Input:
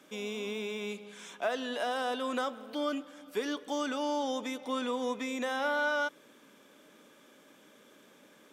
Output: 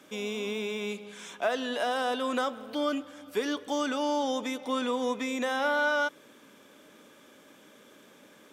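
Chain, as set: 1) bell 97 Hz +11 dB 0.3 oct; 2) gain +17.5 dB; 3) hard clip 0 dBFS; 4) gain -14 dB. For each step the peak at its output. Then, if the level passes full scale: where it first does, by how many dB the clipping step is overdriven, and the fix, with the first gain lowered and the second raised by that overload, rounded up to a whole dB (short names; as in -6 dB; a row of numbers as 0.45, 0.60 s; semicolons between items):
-20.5, -3.0, -3.0, -17.0 dBFS; no overload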